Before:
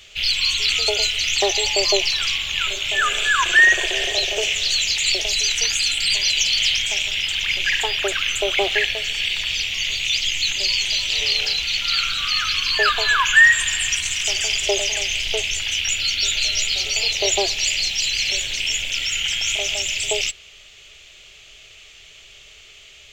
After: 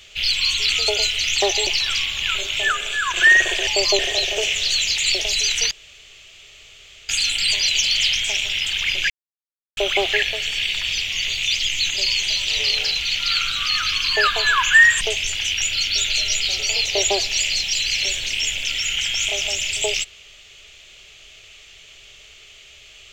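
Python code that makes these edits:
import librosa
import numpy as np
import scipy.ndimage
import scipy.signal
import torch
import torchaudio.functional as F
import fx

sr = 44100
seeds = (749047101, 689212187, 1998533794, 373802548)

y = fx.edit(x, sr, fx.move(start_s=1.67, length_s=0.32, to_s=3.99),
    fx.clip_gain(start_s=3.04, length_s=0.44, db=-4.5),
    fx.insert_room_tone(at_s=5.71, length_s=1.38),
    fx.silence(start_s=7.72, length_s=0.67),
    fx.cut(start_s=13.63, length_s=1.65), tone=tone)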